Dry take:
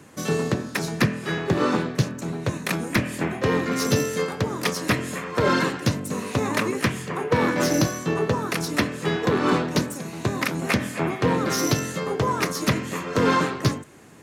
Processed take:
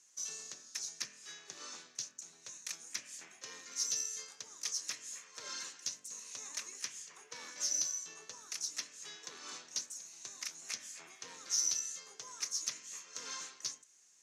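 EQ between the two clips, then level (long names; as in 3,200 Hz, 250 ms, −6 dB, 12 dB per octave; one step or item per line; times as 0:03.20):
resonant band-pass 6,200 Hz, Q 4.7
0.0 dB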